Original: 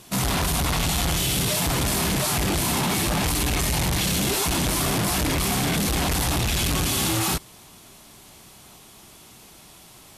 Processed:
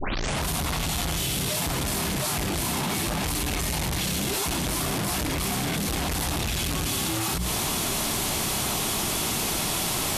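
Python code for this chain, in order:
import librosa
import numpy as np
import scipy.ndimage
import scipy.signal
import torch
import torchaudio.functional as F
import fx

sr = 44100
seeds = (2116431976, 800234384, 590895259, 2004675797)

y = fx.tape_start_head(x, sr, length_s=0.43)
y = fx.hum_notches(y, sr, base_hz=60, count=3)
y = fx.env_flatten(y, sr, amount_pct=100)
y = F.gain(torch.from_numpy(y), -5.0).numpy()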